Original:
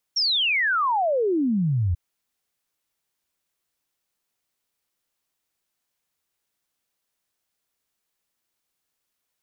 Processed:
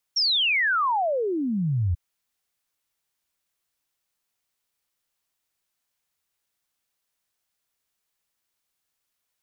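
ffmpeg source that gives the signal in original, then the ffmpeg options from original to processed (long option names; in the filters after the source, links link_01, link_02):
-f lavfi -i "aevalsrc='0.112*clip(min(t,1.79-t)/0.01,0,1)*sin(2*PI*5700*1.79/log(81/5700)*(exp(log(81/5700)*t/1.79)-1))':duration=1.79:sample_rate=44100"
-af "equalizer=frequency=310:width_type=o:width=2.1:gain=-4"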